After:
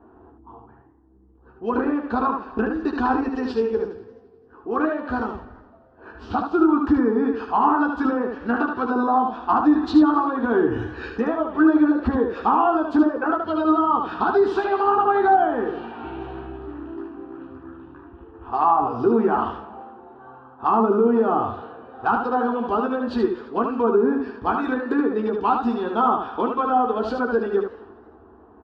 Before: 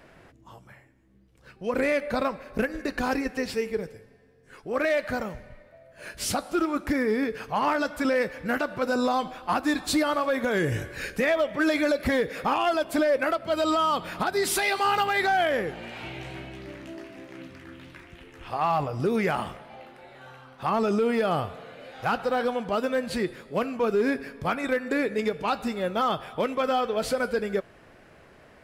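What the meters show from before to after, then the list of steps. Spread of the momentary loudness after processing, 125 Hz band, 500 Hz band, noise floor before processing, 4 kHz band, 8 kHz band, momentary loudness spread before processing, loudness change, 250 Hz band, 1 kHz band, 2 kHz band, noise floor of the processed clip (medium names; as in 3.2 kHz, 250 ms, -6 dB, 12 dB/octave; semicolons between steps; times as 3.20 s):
16 LU, -1.0 dB, +3.5 dB, -55 dBFS, -9.0 dB, under -20 dB, 16 LU, +5.5 dB, +8.5 dB, +7.0 dB, -1.5 dB, -51 dBFS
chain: low-pass that closes with the level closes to 1.2 kHz, closed at -20 dBFS; low-pass 3.2 kHz 12 dB/octave; level-controlled noise filter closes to 750 Hz, open at -25 dBFS; high-pass 58 Hz; static phaser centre 570 Hz, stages 6; on a send: early reflections 13 ms -6 dB, 75 ms -4.5 dB; on the sum: modulated delay 85 ms, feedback 69%, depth 162 cents, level -20 dB; trim +7.5 dB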